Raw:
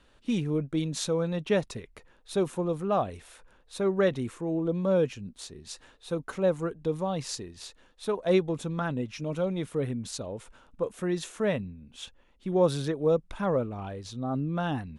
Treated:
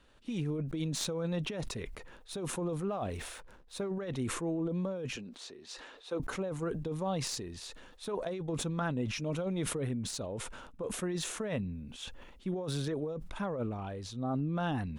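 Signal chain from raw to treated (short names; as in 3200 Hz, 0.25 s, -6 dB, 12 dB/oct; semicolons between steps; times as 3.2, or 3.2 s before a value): tracing distortion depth 0.023 ms; 5.16–6.2 three-band isolator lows -23 dB, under 260 Hz, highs -13 dB, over 6600 Hz; negative-ratio compressor -29 dBFS, ratio -1; 2.87–3.91 backlash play -59 dBFS; sustainer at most 41 dB/s; gain -5 dB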